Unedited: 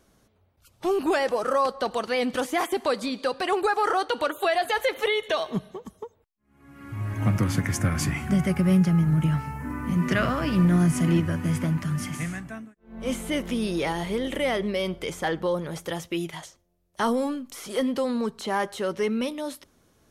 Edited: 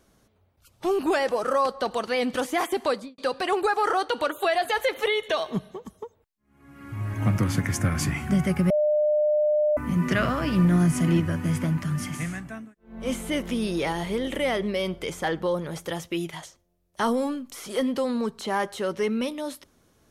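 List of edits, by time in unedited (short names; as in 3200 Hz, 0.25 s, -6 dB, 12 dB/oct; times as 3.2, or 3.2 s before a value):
2.89–3.18 studio fade out
8.7–9.77 bleep 602 Hz -18.5 dBFS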